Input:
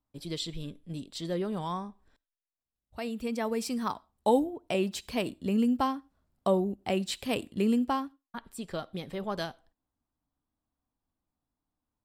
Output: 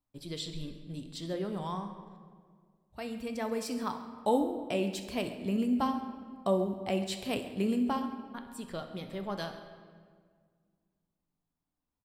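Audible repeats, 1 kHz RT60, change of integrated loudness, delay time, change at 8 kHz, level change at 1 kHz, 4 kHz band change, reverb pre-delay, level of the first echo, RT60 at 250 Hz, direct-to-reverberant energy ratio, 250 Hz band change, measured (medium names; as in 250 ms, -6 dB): 2, 1.7 s, -2.5 dB, 65 ms, -3.0 dB, -2.5 dB, -3.0 dB, 5 ms, -16.5 dB, 2.2 s, 6.0 dB, -2.0 dB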